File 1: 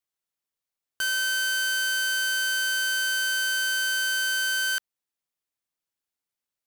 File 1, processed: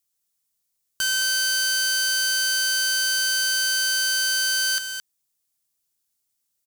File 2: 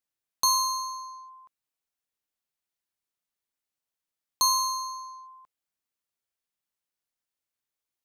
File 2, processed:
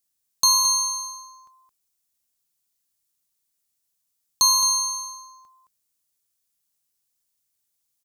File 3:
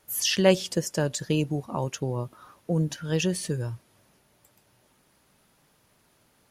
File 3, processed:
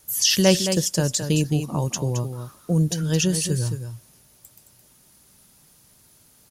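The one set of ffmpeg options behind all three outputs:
ffmpeg -i in.wav -filter_complex "[0:a]acrossover=split=6100[link_01][link_02];[link_02]acompressor=threshold=-39dB:ratio=4:attack=1:release=60[link_03];[link_01][link_03]amix=inputs=2:normalize=0,bass=frequency=250:gain=7,treble=frequency=4000:gain=14,asplit=2[link_04][link_05];[link_05]aecho=0:1:218:0.376[link_06];[link_04][link_06]amix=inputs=2:normalize=0" out.wav

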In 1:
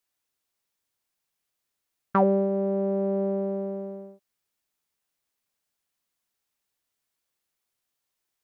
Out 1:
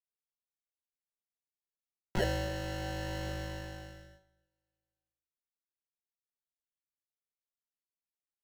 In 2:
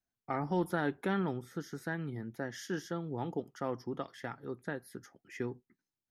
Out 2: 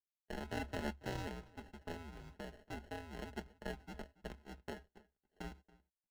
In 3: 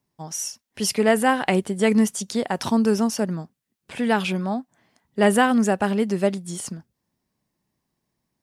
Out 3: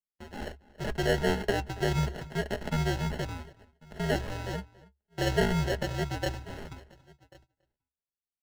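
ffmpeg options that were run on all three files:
ffmpeg -i in.wav -filter_complex "[0:a]aeval=exprs='if(lt(val(0),0),0.251*val(0),val(0))':channel_layout=same,acrusher=samples=36:mix=1:aa=0.000001,asplit=2[link_01][link_02];[link_02]aecho=0:1:1086:0.0841[link_03];[link_01][link_03]amix=inputs=2:normalize=0,acontrast=87,afreqshift=-70,asplit=2[link_04][link_05];[link_05]aeval=exprs='sgn(val(0))*max(abs(val(0))-0.0376,0)':channel_layout=same,volume=-3dB[link_06];[link_04][link_06]amix=inputs=2:normalize=0,agate=range=-23dB:threshold=-39dB:ratio=16:detection=peak,flanger=delay=0.8:depth=1.8:regen=86:speed=0.3:shape=triangular,lowpass=frequency=1700:poles=1,tiltshelf=frequency=1100:gain=-4,aecho=1:1:4.8:0.4,asplit=2[link_07][link_08];[link_08]adelay=279.9,volume=-21dB,highshelf=frequency=4000:gain=-6.3[link_09];[link_07][link_09]amix=inputs=2:normalize=0,volume=-8dB" out.wav

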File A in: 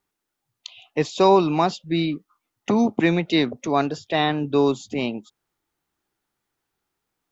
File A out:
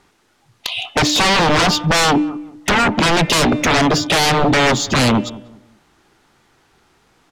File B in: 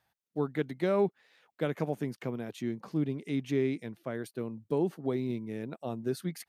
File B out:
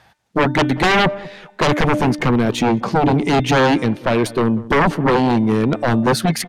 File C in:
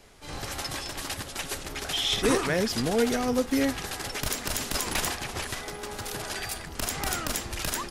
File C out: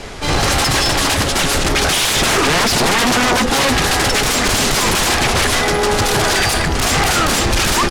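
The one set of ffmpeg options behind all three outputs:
ffmpeg -i in.wav -filter_complex "[0:a]bandreject=frequency=299.4:width_type=h:width=4,bandreject=frequency=598.8:width_type=h:width=4,bandreject=frequency=898.2:width_type=h:width=4,bandreject=frequency=1197.6:width_type=h:width=4,bandreject=frequency=1497:width_type=h:width=4,bandreject=frequency=1796.4:width_type=h:width=4,bandreject=frequency=2095.8:width_type=h:width=4,bandreject=frequency=2395.2:width_type=h:width=4,bandreject=frequency=2694.6:width_type=h:width=4,bandreject=frequency=2994:width_type=h:width=4,bandreject=frequency=3293.4:width_type=h:width=4,bandreject=frequency=3592.8:width_type=h:width=4,alimiter=limit=-16.5dB:level=0:latency=1:release=281,aeval=exprs='0.15*sin(PI/2*5.62*val(0)/0.15)':channel_layout=same,adynamicsmooth=sensitivity=3:basefreq=7700,asplit=2[link_01][link_02];[link_02]adelay=190,lowpass=frequency=820:poles=1,volume=-17dB,asplit=2[link_03][link_04];[link_04]adelay=190,lowpass=frequency=820:poles=1,volume=0.33,asplit=2[link_05][link_06];[link_06]adelay=190,lowpass=frequency=820:poles=1,volume=0.33[link_07];[link_01][link_03][link_05][link_07]amix=inputs=4:normalize=0,volume=6dB" out.wav

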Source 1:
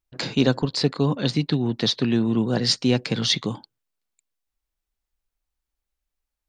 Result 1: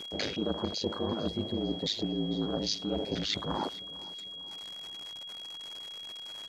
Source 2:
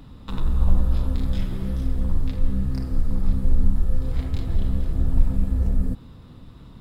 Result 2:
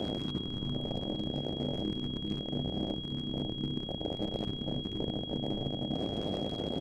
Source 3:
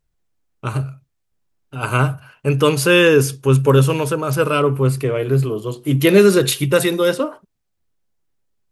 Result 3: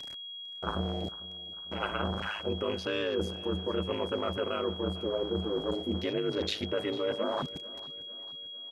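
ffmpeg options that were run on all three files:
ffmpeg -i in.wav -filter_complex "[0:a]aeval=exprs='val(0)+0.5*0.1*sgn(val(0))':channel_layout=same,highpass=190,afwtdn=0.0562,lowpass=7400,equalizer=frequency=580:width=0.96:gain=4,alimiter=limit=-7.5dB:level=0:latency=1:release=362,areverse,acompressor=threshold=-27dB:ratio=6,areverse,aeval=exprs='val(0)*sin(2*PI*52*n/s)':channel_layout=same,aeval=exprs='val(0)+0.01*sin(2*PI*3300*n/s)':channel_layout=same,asplit=2[link_01][link_02];[link_02]aecho=0:1:449|898|1347|1796:0.106|0.054|0.0276|0.0141[link_03];[link_01][link_03]amix=inputs=2:normalize=0" out.wav

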